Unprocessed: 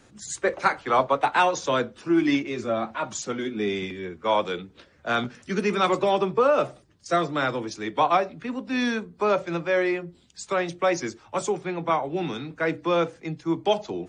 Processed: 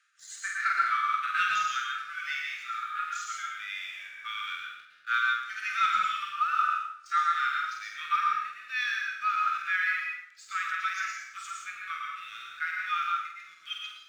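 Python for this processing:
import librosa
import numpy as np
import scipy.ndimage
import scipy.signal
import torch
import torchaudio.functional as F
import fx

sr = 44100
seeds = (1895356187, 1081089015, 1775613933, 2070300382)

y = scipy.signal.sosfilt(scipy.signal.cheby1(10, 1.0, 1200.0, 'highpass', fs=sr, output='sos'), x)
y = fx.high_shelf(y, sr, hz=3900.0, db=-11.0)
y = fx.room_flutter(y, sr, wall_m=8.3, rt60_s=0.34)
y = fx.leveller(y, sr, passes=1)
y = fx.rev_plate(y, sr, seeds[0], rt60_s=0.74, hf_ratio=0.75, predelay_ms=100, drr_db=1.5)
y = fx.hpss(y, sr, part='percussive', gain_db=-11)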